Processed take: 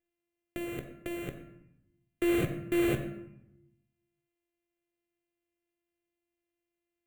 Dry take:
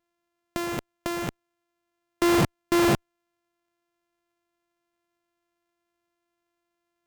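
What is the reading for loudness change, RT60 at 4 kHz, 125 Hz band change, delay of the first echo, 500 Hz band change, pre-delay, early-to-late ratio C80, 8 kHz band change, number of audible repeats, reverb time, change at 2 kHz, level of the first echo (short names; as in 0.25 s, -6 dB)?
-7.0 dB, 0.55 s, -6.0 dB, none, -6.0 dB, 3 ms, 11.0 dB, -12.5 dB, none, 0.80 s, -7.5 dB, none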